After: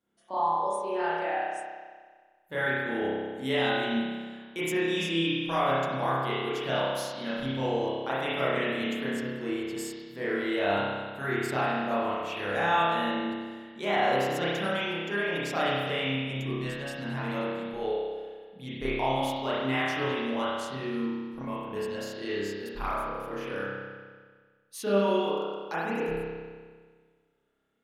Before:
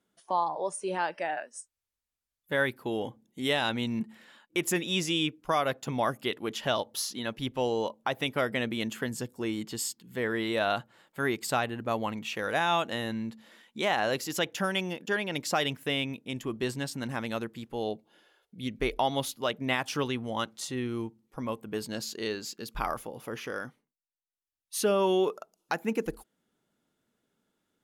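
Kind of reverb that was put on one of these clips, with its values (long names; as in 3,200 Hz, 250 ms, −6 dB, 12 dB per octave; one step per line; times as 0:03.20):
spring reverb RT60 1.6 s, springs 30 ms, chirp 75 ms, DRR −10 dB
level −8.5 dB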